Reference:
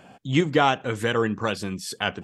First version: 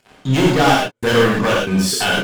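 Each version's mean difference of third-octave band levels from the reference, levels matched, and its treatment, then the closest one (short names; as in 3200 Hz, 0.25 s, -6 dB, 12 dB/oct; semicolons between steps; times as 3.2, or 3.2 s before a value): 10.5 dB: sample leveller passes 5; step gate "xxxxxx..xxxx.xx" 117 bpm -60 dB; non-linear reverb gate 0.15 s flat, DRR -4 dB; gain -8.5 dB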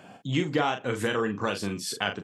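3.5 dB: compressor 3:1, threshold -24 dBFS, peak gain reduction 8 dB; HPF 100 Hz; doubler 40 ms -6.5 dB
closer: second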